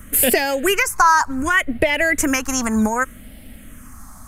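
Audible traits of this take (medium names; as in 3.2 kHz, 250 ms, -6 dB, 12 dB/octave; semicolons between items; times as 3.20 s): phasing stages 4, 0.66 Hz, lowest notch 480–1100 Hz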